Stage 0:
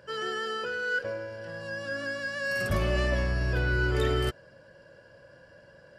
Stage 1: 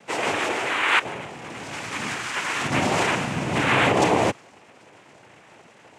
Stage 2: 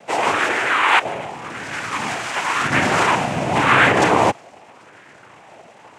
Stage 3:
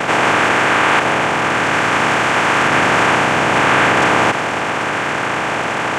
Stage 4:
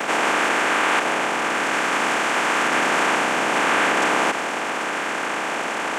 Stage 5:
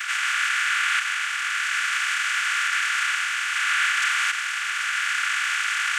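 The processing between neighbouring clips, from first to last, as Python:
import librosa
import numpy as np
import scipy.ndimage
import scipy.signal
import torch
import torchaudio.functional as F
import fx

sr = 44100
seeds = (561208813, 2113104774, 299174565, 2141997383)

y1 = x + 0.76 * np.pad(x, (int(2.8 * sr / 1000.0), 0))[:len(x)]
y1 = fx.echo_wet_highpass(y1, sr, ms=66, feedback_pct=72, hz=2500.0, wet_db=-23.5)
y1 = fx.noise_vocoder(y1, sr, seeds[0], bands=4)
y1 = y1 * librosa.db_to_amplitude(6.0)
y2 = fx.bell_lfo(y1, sr, hz=0.89, low_hz=650.0, high_hz=1700.0, db=9)
y2 = y2 * librosa.db_to_amplitude(2.5)
y3 = fx.bin_compress(y2, sr, power=0.2)
y3 = y3 * librosa.db_to_amplitude(-4.5)
y4 = scipy.signal.sosfilt(scipy.signal.butter(4, 200.0, 'highpass', fs=sr, output='sos'), y3)
y4 = fx.high_shelf(y4, sr, hz=7400.0, db=9.5)
y4 = y4 * librosa.db_to_amplitude(-6.5)
y5 = scipy.signal.sosfilt(scipy.signal.ellip(4, 1.0, 70, 1400.0, 'highpass', fs=sr, output='sos'), y4)
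y5 = fx.rider(y5, sr, range_db=10, speed_s=2.0)
y5 = y5 + 0.4 * np.pad(y5, (int(3.5 * sr / 1000.0), 0))[:len(y5)]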